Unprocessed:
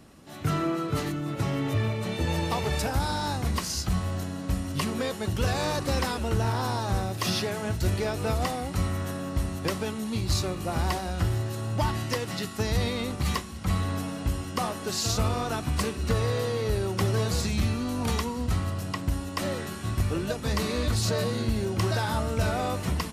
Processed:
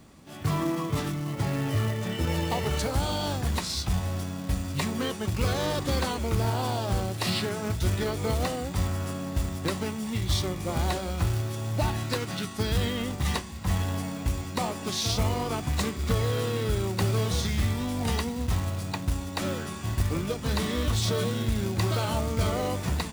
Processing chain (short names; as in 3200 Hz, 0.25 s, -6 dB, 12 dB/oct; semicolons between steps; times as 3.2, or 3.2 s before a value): formant shift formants -3 st; short-mantissa float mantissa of 2-bit